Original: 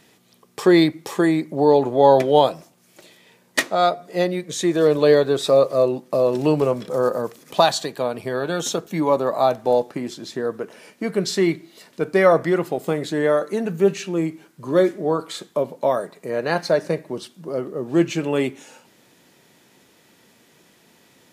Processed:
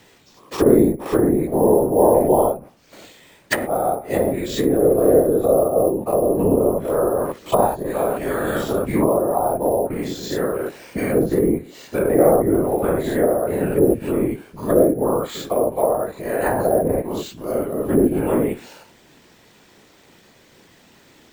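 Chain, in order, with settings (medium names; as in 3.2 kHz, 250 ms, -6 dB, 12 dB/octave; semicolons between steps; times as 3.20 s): every event in the spectrogram widened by 120 ms; low-pass that closes with the level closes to 590 Hz, closed at -11.5 dBFS; careless resampling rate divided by 4×, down none, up hold; whisper effect; trim -1 dB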